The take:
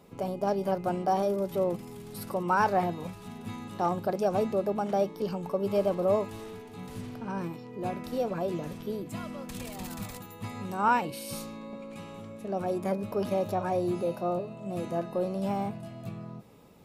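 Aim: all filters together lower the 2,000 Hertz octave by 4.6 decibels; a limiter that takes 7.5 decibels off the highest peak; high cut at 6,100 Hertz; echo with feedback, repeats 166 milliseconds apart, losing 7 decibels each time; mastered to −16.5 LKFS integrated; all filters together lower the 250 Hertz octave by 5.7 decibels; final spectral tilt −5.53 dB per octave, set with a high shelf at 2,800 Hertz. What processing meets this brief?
low-pass filter 6,100 Hz
parametric band 250 Hz −9 dB
parametric band 2,000 Hz −9 dB
high-shelf EQ 2,800 Hz +5 dB
brickwall limiter −22.5 dBFS
repeating echo 166 ms, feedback 45%, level −7 dB
level +18 dB

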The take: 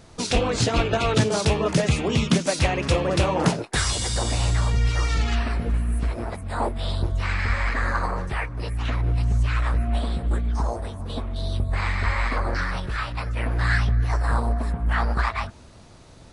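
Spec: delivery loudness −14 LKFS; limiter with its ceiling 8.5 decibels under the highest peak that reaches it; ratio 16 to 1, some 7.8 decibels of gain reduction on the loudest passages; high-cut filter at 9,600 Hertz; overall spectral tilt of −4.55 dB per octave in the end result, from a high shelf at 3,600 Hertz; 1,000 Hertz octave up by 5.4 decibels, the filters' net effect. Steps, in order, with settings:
low-pass filter 9,600 Hz
parametric band 1,000 Hz +6.5 dB
high-shelf EQ 3,600 Hz +4.5 dB
downward compressor 16 to 1, threshold −22 dBFS
level +15 dB
brickwall limiter −4 dBFS

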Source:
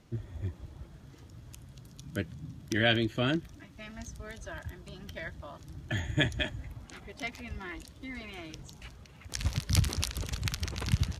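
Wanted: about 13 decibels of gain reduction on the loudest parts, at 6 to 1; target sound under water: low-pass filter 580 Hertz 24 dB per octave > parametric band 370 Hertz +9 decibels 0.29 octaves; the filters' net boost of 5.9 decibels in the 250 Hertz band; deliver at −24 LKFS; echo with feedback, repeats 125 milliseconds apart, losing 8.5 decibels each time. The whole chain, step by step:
parametric band 250 Hz +5 dB
downward compressor 6 to 1, threshold −33 dBFS
low-pass filter 580 Hz 24 dB per octave
parametric band 370 Hz +9 dB 0.29 octaves
repeating echo 125 ms, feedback 38%, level −8.5 dB
level +17 dB

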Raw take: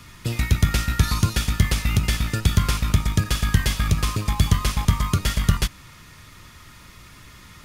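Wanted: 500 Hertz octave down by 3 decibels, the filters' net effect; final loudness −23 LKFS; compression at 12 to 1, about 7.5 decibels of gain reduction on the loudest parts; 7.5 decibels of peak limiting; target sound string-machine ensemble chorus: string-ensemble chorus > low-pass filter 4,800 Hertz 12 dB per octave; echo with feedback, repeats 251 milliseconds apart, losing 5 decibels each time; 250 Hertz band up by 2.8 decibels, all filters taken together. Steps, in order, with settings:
parametric band 250 Hz +5.5 dB
parametric band 500 Hz −6.5 dB
downward compressor 12 to 1, threshold −18 dBFS
brickwall limiter −15.5 dBFS
repeating echo 251 ms, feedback 56%, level −5 dB
string-ensemble chorus
low-pass filter 4,800 Hz 12 dB per octave
level +7.5 dB

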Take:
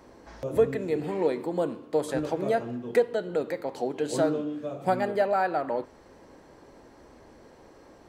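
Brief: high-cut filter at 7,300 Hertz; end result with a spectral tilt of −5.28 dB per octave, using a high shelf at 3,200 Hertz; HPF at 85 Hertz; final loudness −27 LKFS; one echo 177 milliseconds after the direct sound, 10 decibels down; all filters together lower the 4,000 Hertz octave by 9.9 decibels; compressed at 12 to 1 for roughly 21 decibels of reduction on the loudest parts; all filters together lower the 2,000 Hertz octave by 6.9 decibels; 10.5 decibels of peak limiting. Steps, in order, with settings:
high-pass filter 85 Hz
low-pass filter 7,300 Hz
parametric band 2,000 Hz −6.5 dB
high-shelf EQ 3,200 Hz −6 dB
parametric band 4,000 Hz −5.5 dB
downward compressor 12 to 1, threshold −38 dBFS
brickwall limiter −38 dBFS
single-tap delay 177 ms −10 dB
level +20.5 dB

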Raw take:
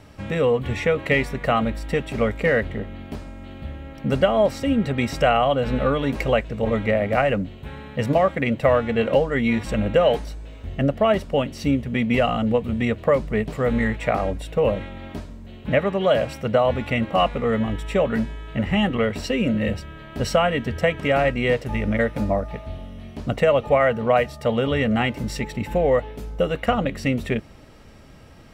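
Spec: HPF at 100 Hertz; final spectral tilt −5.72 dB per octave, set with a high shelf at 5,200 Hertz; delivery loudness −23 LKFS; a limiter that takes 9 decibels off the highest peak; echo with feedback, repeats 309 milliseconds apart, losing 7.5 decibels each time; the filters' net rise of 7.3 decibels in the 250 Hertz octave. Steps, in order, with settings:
high-pass filter 100 Hz
parametric band 250 Hz +8.5 dB
high-shelf EQ 5,200 Hz +5.5 dB
brickwall limiter −12.5 dBFS
repeating echo 309 ms, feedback 42%, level −7.5 dB
level −1 dB

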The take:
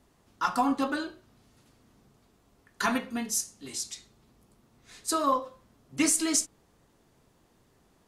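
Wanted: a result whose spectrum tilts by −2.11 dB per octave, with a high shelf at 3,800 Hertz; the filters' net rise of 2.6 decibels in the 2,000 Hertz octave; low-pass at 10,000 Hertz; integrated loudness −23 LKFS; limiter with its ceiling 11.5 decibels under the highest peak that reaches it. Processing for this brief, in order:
low-pass filter 10,000 Hz
parametric band 2,000 Hz +4.5 dB
high-shelf EQ 3,800 Hz −4 dB
level +11 dB
brickwall limiter −11.5 dBFS

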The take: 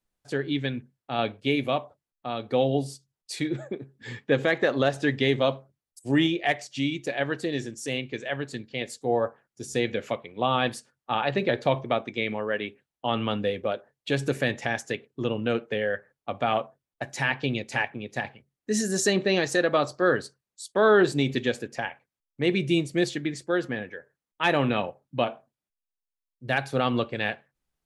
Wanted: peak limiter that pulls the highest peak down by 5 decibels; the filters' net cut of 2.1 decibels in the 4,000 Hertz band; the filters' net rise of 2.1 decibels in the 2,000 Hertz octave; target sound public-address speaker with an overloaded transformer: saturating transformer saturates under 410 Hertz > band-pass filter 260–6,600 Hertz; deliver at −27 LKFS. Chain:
parametric band 2,000 Hz +3.5 dB
parametric band 4,000 Hz −4 dB
brickwall limiter −12.5 dBFS
saturating transformer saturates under 410 Hz
band-pass filter 260–6,600 Hz
level +2.5 dB

